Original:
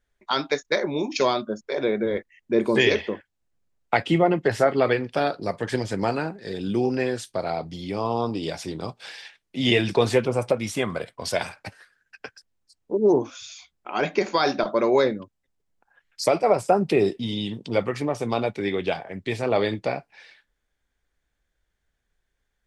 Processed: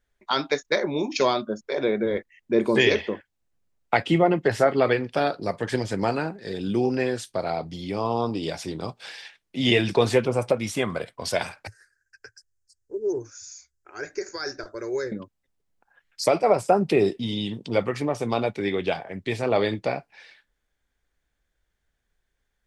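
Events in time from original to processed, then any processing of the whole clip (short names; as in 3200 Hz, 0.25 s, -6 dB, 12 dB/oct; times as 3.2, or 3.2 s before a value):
11.67–15.12 EQ curve 110 Hz 0 dB, 190 Hz -27 dB, 390 Hz -6 dB, 690 Hz -20 dB, 1100 Hz -18 dB, 1600 Hz -3 dB, 3300 Hz -27 dB, 4800 Hz -3 dB, 6800 Hz +4 dB, 12000 Hz -5 dB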